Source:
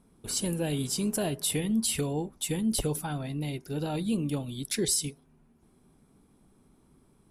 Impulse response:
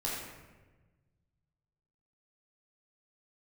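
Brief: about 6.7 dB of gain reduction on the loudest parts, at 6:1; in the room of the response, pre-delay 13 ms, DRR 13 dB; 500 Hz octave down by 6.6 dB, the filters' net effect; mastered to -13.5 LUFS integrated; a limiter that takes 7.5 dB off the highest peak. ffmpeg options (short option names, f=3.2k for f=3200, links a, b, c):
-filter_complex "[0:a]equalizer=f=500:t=o:g=-8.5,acompressor=threshold=-32dB:ratio=6,alimiter=level_in=4dB:limit=-24dB:level=0:latency=1,volume=-4dB,asplit=2[a][b];[1:a]atrim=start_sample=2205,adelay=13[c];[b][c]afir=irnorm=-1:irlink=0,volume=-18dB[d];[a][d]amix=inputs=2:normalize=0,volume=23dB"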